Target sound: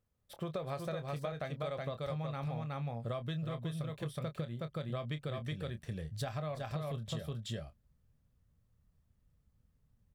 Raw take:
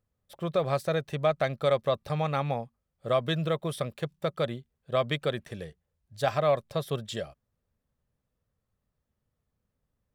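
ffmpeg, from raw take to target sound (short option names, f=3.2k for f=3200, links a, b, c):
-filter_complex "[0:a]asplit=2[a][b];[b]aecho=0:1:370:0.708[c];[a][c]amix=inputs=2:normalize=0,asubboost=boost=3:cutoff=230,asplit=2[d][e];[e]adelay=26,volume=-10.5dB[f];[d][f]amix=inputs=2:normalize=0,acompressor=threshold=-33dB:ratio=12,volume=-2dB"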